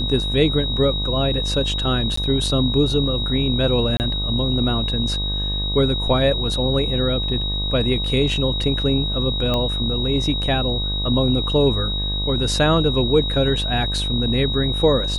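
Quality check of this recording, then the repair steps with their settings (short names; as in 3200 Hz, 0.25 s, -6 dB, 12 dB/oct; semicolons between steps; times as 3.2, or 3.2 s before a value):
buzz 50 Hz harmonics 24 -25 dBFS
tone 3800 Hz -24 dBFS
2.16–2.17 gap 14 ms
3.97–4 gap 29 ms
9.54 pop -10 dBFS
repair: de-click; de-hum 50 Hz, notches 24; notch 3800 Hz, Q 30; interpolate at 2.16, 14 ms; interpolate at 3.97, 29 ms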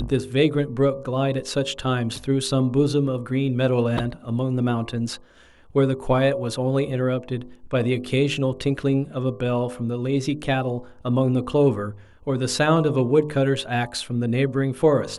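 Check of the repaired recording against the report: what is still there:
none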